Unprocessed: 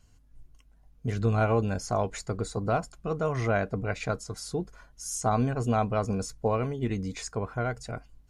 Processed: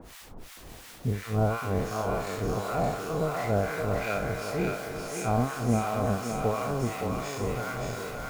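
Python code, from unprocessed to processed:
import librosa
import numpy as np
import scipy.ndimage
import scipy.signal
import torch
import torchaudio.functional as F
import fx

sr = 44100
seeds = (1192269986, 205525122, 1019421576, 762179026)

y = fx.spec_trails(x, sr, decay_s=1.98)
y = fx.bass_treble(y, sr, bass_db=3, treble_db=-10)
y = fx.dmg_noise_colour(y, sr, seeds[0], colour='pink', level_db=-42.0)
y = fx.harmonic_tremolo(y, sr, hz=2.8, depth_pct=100, crossover_hz=1000.0)
y = fx.echo_thinned(y, sr, ms=570, feedback_pct=68, hz=390.0, wet_db=-3.5)
y = y * librosa.db_to_amplitude(-1.0)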